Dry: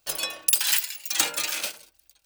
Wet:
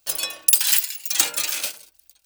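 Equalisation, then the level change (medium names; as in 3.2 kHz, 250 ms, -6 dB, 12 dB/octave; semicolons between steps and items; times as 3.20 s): treble shelf 4.3 kHz +7 dB; -1.0 dB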